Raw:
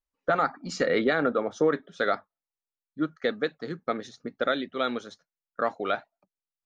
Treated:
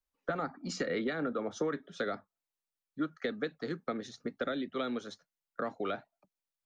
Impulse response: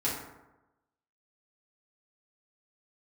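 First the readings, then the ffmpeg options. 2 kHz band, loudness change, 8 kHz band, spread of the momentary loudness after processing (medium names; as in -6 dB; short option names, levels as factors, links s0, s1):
-9.5 dB, -8.5 dB, no reading, 9 LU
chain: -filter_complex "[0:a]acrossover=split=350|970[s0][s1][s2];[s1]alimiter=level_in=1.33:limit=0.0631:level=0:latency=1:release=390,volume=0.75[s3];[s0][s3][s2]amix=inputs=3:normalize=0,acrossover=split=180|600[s4][s5][s6];[s4]acompressor=threshold=0.00355:ratio=4[s7];[s5]acompressor=threshold=0.0224:ratio=4[s8];[s6]acompressor=threshold=0.0112:ratio=4[s9];[s7][s8][s9]amix=inputs=3:normalize=0"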